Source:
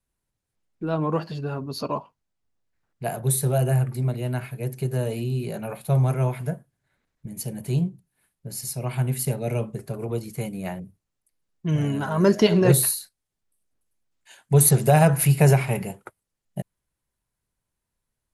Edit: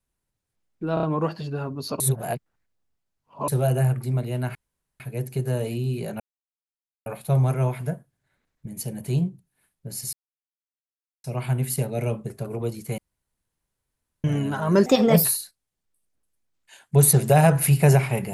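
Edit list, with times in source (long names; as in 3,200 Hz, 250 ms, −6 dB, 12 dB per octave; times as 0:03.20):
0:00.94: stutter 0.03 s, 4 plays
0:01.91–0:03.39: reverse
0:04.46: splice in room tone 0.45 s
0:05.66: splice in silence 0.86 s
0:08.73: splice in silence 1.11 s
0:10.47–0:11.73: fill with room tone
0:12.35–0:12.82: play speed 123%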